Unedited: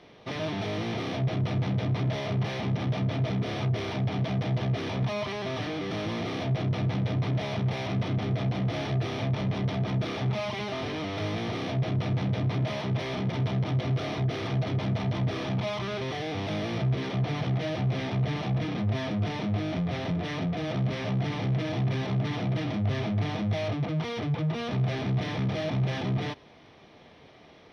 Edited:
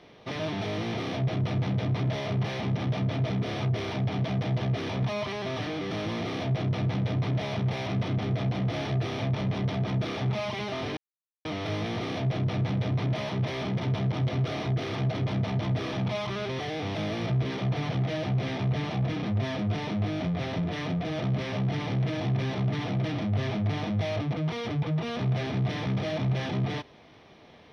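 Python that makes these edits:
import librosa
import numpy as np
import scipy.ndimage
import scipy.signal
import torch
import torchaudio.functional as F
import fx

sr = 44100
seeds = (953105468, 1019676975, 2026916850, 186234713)

y = fx.edit(x, sr, fx.insert_silence(at_s=10.97, length_s=0.48), tone=tone)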